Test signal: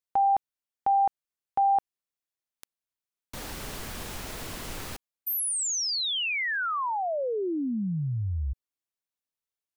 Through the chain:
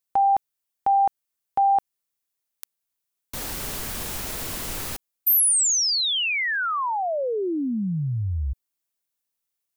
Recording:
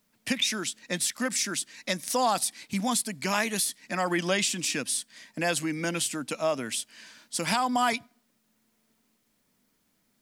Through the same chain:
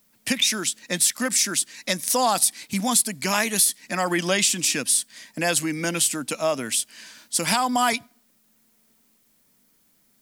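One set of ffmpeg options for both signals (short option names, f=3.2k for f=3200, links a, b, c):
-af "crystalizer=i=1:c=0,volume=3.5dB"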